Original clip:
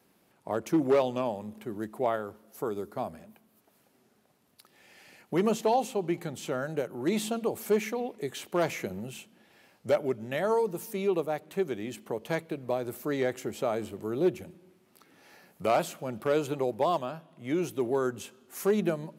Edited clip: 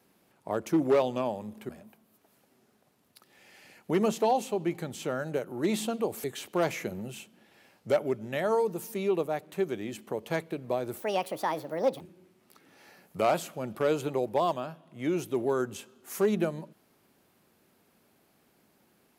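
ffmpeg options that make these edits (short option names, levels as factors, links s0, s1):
-filter_complex "[0:a]asplit=5[s0][s1][s2][s3][s4];[s0]atrim=end=1.692[s5];[s1]atrim=start=3.118:end=7.672[s6];[s2]atrim=start=8.228:end=12.994[s7];[s3]atrim=start=12.99:end=14.46,asetpts=PTS-STARTPTS,asetrate=64386,aresample=44100,atrim=end_sample=44402,asetpts=PTS-STARTPTS[s8];[s4]atrim=start=14.456[s9];[s5][s6]acrossfade=d=0.004:c1=hsin:c2=hsin[s10];[s10][s7]acrossfade=d=0.004:c1=hsin:c2=hsin[s11];[s11][s8]acrossfade=d=0.004:c1=hsin:c2=hsin[s12];[s12][s9]acrossfade=d=0.004:c1=hsin:c2=hsin"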